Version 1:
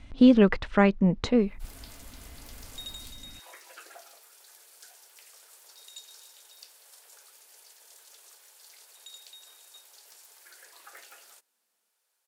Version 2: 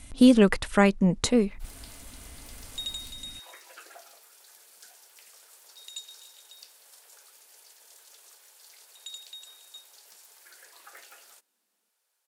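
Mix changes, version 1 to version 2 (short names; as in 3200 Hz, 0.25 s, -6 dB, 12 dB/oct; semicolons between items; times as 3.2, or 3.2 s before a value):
speech: remove air absorption 200 m; second sound +6.5 dB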